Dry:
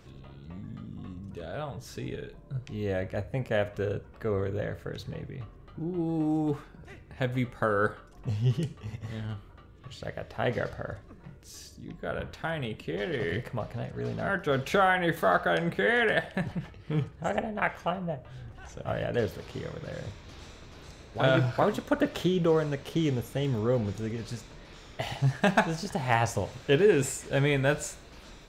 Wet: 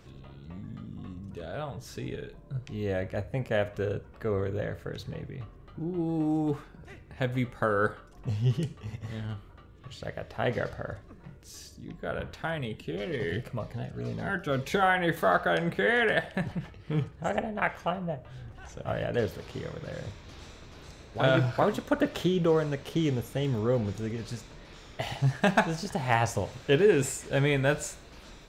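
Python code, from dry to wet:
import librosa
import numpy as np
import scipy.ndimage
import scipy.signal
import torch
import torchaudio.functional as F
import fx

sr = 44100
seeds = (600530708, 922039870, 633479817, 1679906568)

y = fx.notch_cascade(x, sr, direction='falling', hz=2.0, at=(12.58, 14.83))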